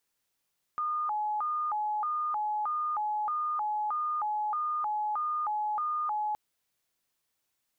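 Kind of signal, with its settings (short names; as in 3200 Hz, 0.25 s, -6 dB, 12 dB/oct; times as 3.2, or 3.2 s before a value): siren hi-lo 846–1220 Hz 1.6/s sine -28 dBFS 5.57 s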